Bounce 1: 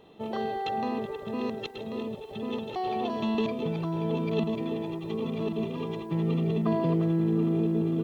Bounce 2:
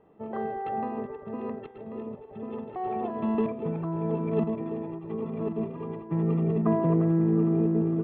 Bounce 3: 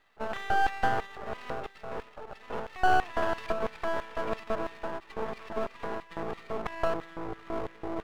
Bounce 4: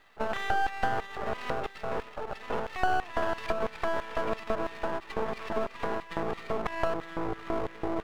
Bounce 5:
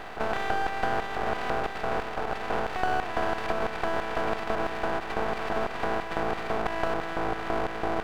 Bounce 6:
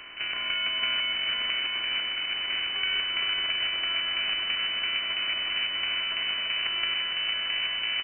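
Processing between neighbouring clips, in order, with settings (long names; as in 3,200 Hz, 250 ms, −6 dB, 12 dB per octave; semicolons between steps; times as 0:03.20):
low-pass filter 1,900 Hz 24 dB per octave; hum removal 125.1 Hz, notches 30; expander for the loud parts 1.5 to 1, over −38 dBFS; level +3 dB
brickwall limiter −22.5 dBFS, peak gain reduction 9.5 dB; auto-filter high-pass square 3 Hz 670–1,800 Hz; half-wave rectification; level +8 dB
downward compressor 2.5 to 1, threshold −34 dBFS, peak gain reduction 11.5 dB; level +7 dB
compressor on every frequency bin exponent 0.4; level −3 dB
single-tap delay 170 ms −8 dB; voice inversion scrambler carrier 3,000 Hz; single-tap delay 459 ms −5 dB; level −5.5 dB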